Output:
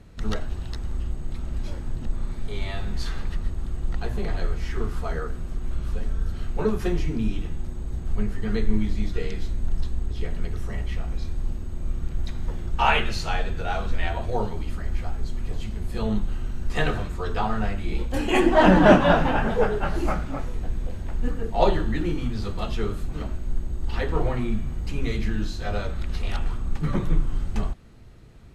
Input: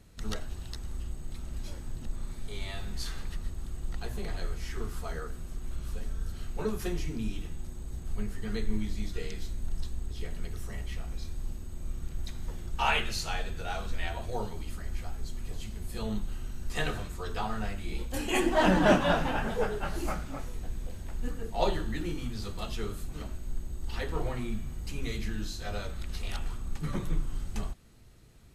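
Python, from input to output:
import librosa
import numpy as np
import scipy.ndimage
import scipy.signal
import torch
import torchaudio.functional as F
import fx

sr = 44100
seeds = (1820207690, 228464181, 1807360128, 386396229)

y = fx.lowpass(x, sr, hz=2200.0, slope=6)
y = y * 10.0 ** (8.5 / 20.0)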